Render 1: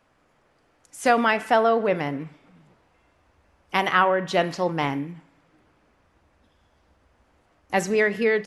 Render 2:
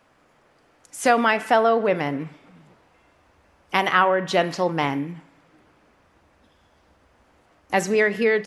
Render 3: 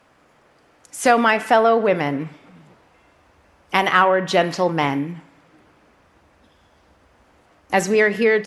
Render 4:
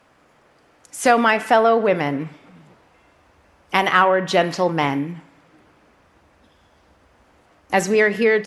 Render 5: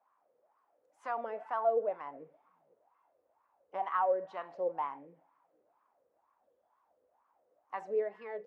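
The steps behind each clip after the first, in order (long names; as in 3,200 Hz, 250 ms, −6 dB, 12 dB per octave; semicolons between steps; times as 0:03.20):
low-shelf EQ 83 Hz −7.5 dB; in parallel at −2.5 dB: downward compressor, threshold −29 dBFS, peak gain reduction 15 dB
harmonic generator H 5 −33 dB, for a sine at −4 dBFS; level +2.5 dB
no processing that can be heard
LFO wah 2.1 Hz 480–1,100 Hz, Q 7.8; level −7 dB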